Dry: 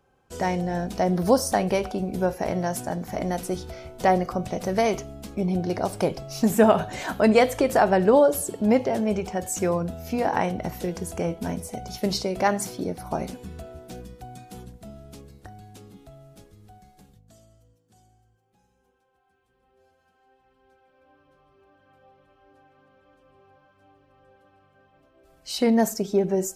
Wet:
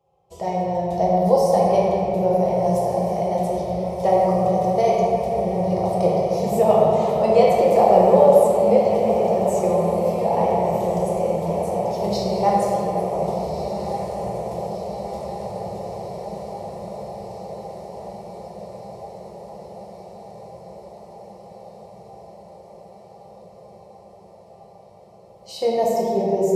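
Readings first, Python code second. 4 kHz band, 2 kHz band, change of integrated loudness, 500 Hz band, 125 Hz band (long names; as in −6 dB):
−2.5 dB, −7.0 dB, +4.5 dB, +7.0 dB, +4.0 dB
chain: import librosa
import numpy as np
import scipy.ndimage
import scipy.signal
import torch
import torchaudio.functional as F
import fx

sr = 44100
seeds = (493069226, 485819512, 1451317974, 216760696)

p1 = scipy.signal.sosfilt(scipy.signal.butter(2, 100.0, 'highpass', fs=sr, output='sos'), x)
p2 = fx.high_shelf(p1, sr, hz=3000.0, db=-10.5)
p3 = fx.level_steps(p2, sr, step_db=11)
p4 = p2 + F.gain(torch.from_numpy(p3), 1.0).numpy()
p5 = fx.fixed_phaser(p4, sr, hz=640.0, stages=4)
p6 = p5 + fx.echo_diffused(p5, sr, ms=1500, feedback_pct=71, wet_db=-9.5, dry=0)
p7 = fx.room_shoebox(p6, sr, seeds[0], volume_m3=150.0, walls='hard', distance_m=0.76)
y = F.gain(torch.from_numpy(p7), -3.5).numpy()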